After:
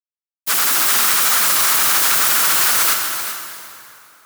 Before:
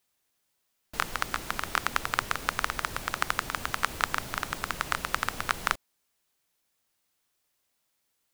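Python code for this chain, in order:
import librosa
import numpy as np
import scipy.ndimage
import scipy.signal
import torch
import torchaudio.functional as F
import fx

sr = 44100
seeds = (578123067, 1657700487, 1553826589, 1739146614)

p1 = fx.stretch_vocoder_free(x, sr, factor=0.51)
p2 = scipy.signal.sosfilt(scipy.signal.butter(4, 110.0, 'highpass', fs=sr, output='sos'), p1)
p3 = fx.fuzz(p2, sr, gain_db=42.0, gate_db=-51.0)
p4 = fx.riaa(p3, sr, side='recording')
p5 = p4 + fx.echo_single(p4, sr, ms=383, db=-10.5, dry=0)
p6 = fx.rev_plate(p5, sr, seeds[0], rt60_s=2.8, hf_ratio=0.8, predelay_ms=0, drr_db=2.5)
y = F.gain(torch.from_numpy(p6), -8.0).numpy()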